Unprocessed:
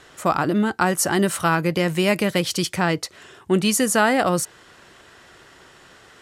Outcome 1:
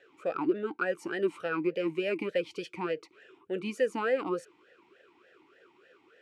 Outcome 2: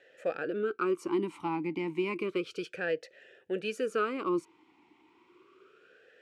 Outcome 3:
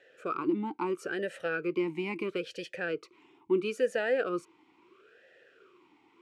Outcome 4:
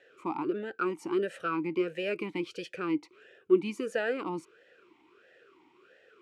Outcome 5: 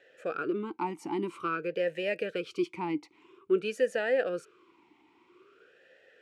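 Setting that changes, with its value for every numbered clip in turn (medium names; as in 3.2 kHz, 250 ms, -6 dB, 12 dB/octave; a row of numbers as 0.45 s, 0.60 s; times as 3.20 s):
talking filter, rate: 3.4 Hz, 0.31 Hz, 0.75 Hz, 1.5 Hz, 0.5 Hz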